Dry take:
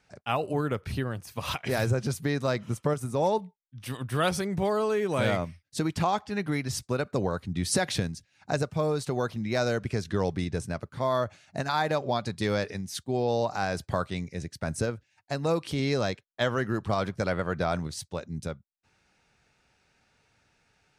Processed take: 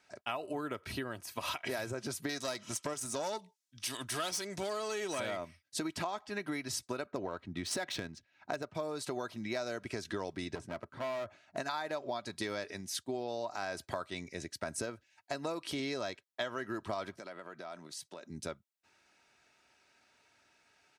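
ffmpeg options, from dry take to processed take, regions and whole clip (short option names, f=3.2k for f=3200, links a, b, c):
-filter_complex "[0:a]asettb=1/sr,asplit=3[a][b][c];[a]atrim=end=2.294[d];[b]atrim=start=2.29:end=5.2,asetpts=PTS-STARTPTS,afade=t=in:d=0.004:c=qsin,afade=t=out:st=2.906:d=0.004:c=qsin,equalizer=f=6.1k:w=0.62:g=14.5,aeval=exprs='(tanh(10*val(0)+0.4)-tanh(0.4))/10':c=same[e];[c]atrim=start=5.196[f];[d][e]acrossfade=d=0.004:c1=hsin:c2=qsin[g];[g][f]acrossfade=d=0.004:c1=qsin:c2=hsin,asettb=1/sr,asplit=3[h][i][j];[h]atrim=end=7.064[k];[i]atrim=start=7.06:end=8.75,asetpts=PTS-STARTPTS,afade=t=in:d=0.004:c=qsin,afade=t=out:st=1.686:d=0.004:c=qsin,adynamicsmooth=sensitivity=5:basefreq=3.1k,bandreject=f=4.7k:w=24[l];[j]atrim=start=8.746[m];[k][l]acrossfade=d=0.004:c1=hsin:c2=qsin[n];[n][m]acrossfade=d=0.004:c1=qsin:c2=hsin,asettb=1/sr,asplit=3[o][p][q];[o]atrim=end=10.554[r];[p]atrim=start=10.55:end=11.57,asetpts=PTS-STARTPTS,afade=t=in:d=0.004:c=qsin,afade=t=out:st=1.016:d=0.004:c=qsin,lowpass=f=1.3k:p=1,volume=31dB,asoftclip=hard,volume=-31dB[s];[q]atrim=start=11.566[t];[r][s]acrossfade=d=0.004:c1=hsin:c2=qsin[u];[u][t]acrossfade=d=0.004:c1=qsin:c2=hsin,asettb=1/sr,asplit=3[v][w][x];[v]atrim=end=17.174[y];[w]atrim=start=17.17:end=18.3,asetpts=PTS-STARTPTS,afade=t=in:d=0.004:c=qsin,afade=t=out:st=1.126:d=0.004:c=qsin,highpass=f=140:w=0.5412,highpass=f=140:w=1.3066,acompressor=threshold=-41dB:ratio=6:attack=3.2:release=140:knee=1:detection=peak[z];[x]atrim=start=18.296[aa];[y][z]acrossfade=d=0.004:c1=hsin:c2=qsin[ab];[ab][aa]acrossfade=d=0.004:c1=qsin:c2=hsin,highpass=f=380:p=1,aecho=1:1:3.1:0.41,acompressor=threshold=-34dB:ratio=6"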